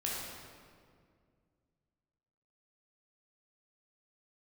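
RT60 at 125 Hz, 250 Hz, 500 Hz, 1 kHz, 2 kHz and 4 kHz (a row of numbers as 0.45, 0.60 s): 3.0, 2.7, 2.3, 1.9, 1.6, 1.3 s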